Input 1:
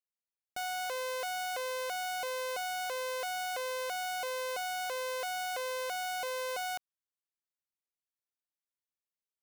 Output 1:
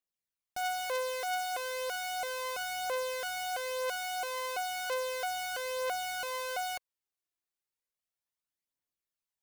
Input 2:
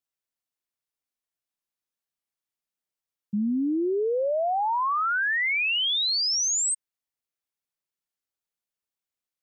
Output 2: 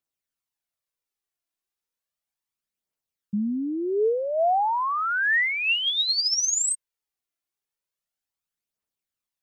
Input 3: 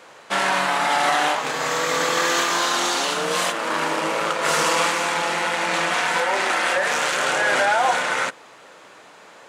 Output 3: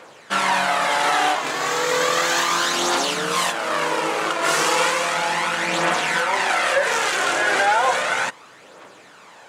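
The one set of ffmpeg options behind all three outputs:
ffmpeg -i in.wav -af "aphaser=in_gain=1:out_gain=1:delay=3:decay=0.42:speed=0.34:type=triangular" out.wav

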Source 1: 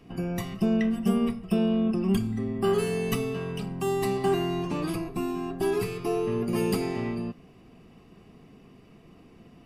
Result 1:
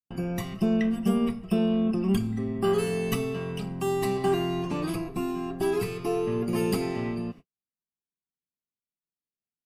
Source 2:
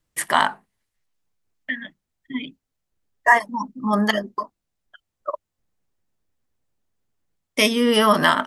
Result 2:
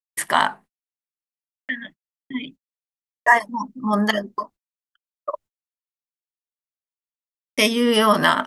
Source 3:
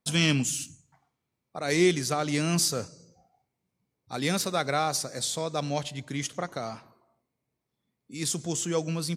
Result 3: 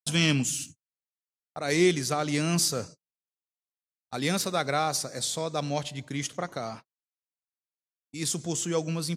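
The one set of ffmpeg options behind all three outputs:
ffmpeg -i in.wav -af "agate=range=-55dB:threshold=-42dB:ratio=16:detection=peak" out.wav

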